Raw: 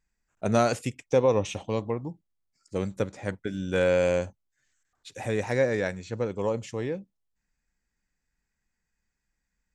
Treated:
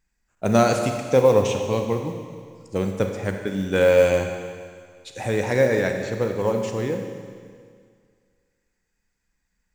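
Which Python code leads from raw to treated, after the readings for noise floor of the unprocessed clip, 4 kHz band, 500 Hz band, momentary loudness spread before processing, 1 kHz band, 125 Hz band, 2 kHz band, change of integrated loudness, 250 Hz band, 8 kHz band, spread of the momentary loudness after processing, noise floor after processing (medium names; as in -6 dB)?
-81 dBFS, +6.0 dB, +6.5 dB, 12 LU, +5.5 dB, +5.5 dB, +5.5 dB, +6.0 dB, +6.0 dB, +6.0 dB, 18 LU, -75 dBFS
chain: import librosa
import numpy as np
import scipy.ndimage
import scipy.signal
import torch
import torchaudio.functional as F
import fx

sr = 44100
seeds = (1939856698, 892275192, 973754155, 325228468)

y = fx.rev_schroeder(x, sr, rt60_s=2.0, comb_ms=31, drr_db=4.5)
y = fx.mod_noise(y, sr, seeds[0], snr_db=32)
y = y * librosa.db_to_amplitude(4.5)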